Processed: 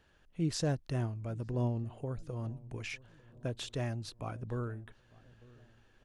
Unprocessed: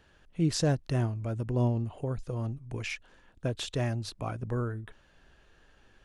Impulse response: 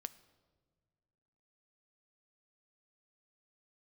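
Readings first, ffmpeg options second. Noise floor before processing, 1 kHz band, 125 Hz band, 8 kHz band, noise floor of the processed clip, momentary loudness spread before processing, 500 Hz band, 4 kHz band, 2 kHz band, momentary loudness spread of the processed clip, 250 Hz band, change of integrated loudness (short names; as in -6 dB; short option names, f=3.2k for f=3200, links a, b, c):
-62 dBFS, -5.5 dB, -5.5 dB, -5.5 dB, -66 dBFS, 9 LU, -5.5 dB, -5.5 dB, -5.5 dB, 9 LU, -5.5 dB, -5.5 dB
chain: -filter_complex "[0:a]asplit=2[a][b];[b]adelay=900,lowpass=f=970:p=1,volume=-22dB,asplit=2[c][d];[d]adelay=900,lowpass=f=970:p=1,volume=0.55,asplit=2[e][f];[f]adelay=900,lowpass=f=970:p=1,volume=0.55,asplit=2[g][h];[h]adelay=900,lowpass=f=970:p=1,volume=0.55[i];[a][c][e][g][i]amix=inputs=5:normalize=0,volume=-5.5dB"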